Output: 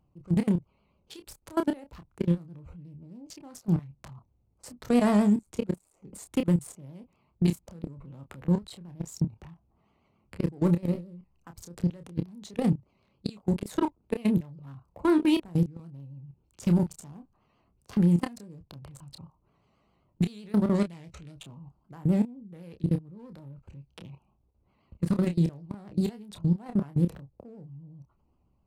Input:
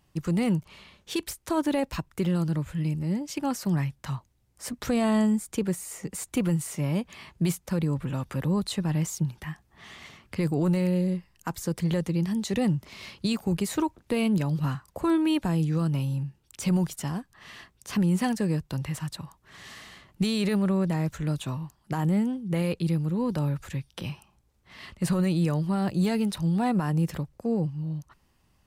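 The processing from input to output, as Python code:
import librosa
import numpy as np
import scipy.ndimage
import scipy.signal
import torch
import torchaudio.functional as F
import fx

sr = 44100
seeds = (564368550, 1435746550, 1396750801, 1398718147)

y = fx.wiener(x, sr, points=25)
y = fx.band_shelf(y, sr, hz=4400.0, db=12.0, octaves=2.7, at=(20.74, 21.31), fade=0.02)
y = fx.level_steps(y, sr, step_db=24)
y = fx.vibrato(y, sr, rate_hz=7.7, depth_cents=98.0)
y = fx.doubler(y, sr, ms=29.0, db=-8)
y = F.gain(torch.from_numpy(y), 2.5).numpy()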